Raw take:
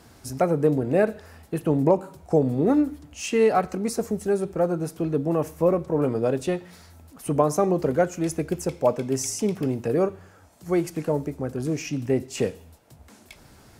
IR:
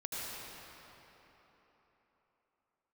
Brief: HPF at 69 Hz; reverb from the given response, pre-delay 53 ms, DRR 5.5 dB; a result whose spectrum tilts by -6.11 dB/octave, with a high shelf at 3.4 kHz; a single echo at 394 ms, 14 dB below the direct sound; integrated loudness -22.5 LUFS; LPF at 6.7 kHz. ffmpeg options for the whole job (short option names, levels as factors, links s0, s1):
-filter_complex "[0:a]highpass=69,lowpass=6700,highshelf=f=3400:g=-4,aecho=1:1:394:0.2,asplit=2[s0][s1];[1:a]atrim=start_sample=2205,adelay=53[s2];[s1][s2]afir=irnorm=-1:irlink=0,volume=0.376[s3];[s0][s3]amix=inputs=2:normalize=0,volume=1.19"